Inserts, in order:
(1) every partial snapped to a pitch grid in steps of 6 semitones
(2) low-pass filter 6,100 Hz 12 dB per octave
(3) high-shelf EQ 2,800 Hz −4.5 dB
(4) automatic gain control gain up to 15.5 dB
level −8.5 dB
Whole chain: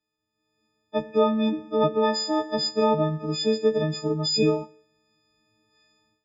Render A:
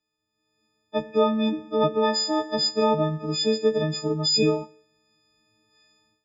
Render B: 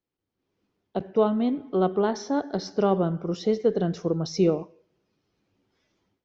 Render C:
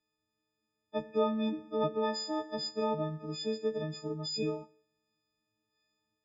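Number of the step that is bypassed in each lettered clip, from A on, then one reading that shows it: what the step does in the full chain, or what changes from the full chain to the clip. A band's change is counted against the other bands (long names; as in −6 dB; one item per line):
3, 4 kHz band +3.0 dB
1, 4 kHz band −11.0 dB
4, change in crest factor +1.5 dB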